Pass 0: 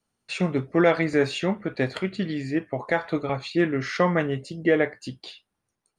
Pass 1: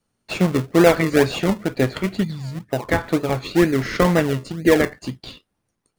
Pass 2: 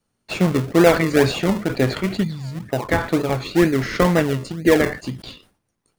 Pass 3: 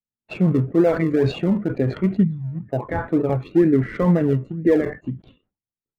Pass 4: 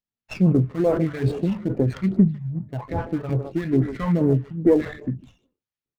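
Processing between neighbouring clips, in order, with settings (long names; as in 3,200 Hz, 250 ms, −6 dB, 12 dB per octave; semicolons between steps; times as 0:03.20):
gain on a spectral selection 0:02.23–0:02.69, 240–3,400 Hz −20 dB; in parallel at −4 dB: sample-and-hold swept by an LFO 39×, swing 100% 2.1 Hz; on the sum: level +2.5 dB
level that may fall only so fast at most 130 dB per second
adaptive Wiener filter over 9 samples; brickwall limiter −11.5 dBFS, peak gain reduction 9.5 dB; every bin expanded away from the loudest bin 1.5 to 1; level +5 dB
far-end echo of a speakerphone 150 ms, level −11 dB; all-pass phaser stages 2, 2.4 Hz, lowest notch 310–3,100 Hz; windowed peak hold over 5 samples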